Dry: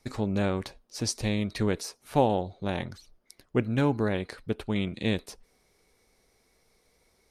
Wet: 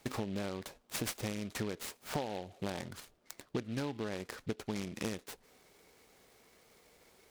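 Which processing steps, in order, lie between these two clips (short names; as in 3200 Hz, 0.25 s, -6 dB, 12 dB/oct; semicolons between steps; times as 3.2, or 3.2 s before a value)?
HPF 170 Hz 6 dB/oct; compressor 10:1, threshold -39 dBFS, peak gain reduction 21.5 dB; noise-modulated delay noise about 2600 Hz, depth 0.059 ms; gain +5 dB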